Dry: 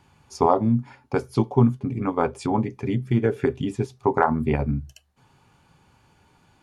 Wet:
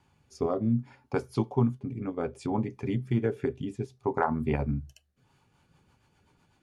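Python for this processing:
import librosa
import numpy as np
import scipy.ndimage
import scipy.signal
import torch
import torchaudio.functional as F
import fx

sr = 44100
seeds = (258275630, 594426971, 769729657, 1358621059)

y = fx.rotary_switch(x, sr, hz=0.6, then_hz=8.0, switch_at_s=4.99)
y = F.gain(torch.from_numpy(y), -5.0).numpy()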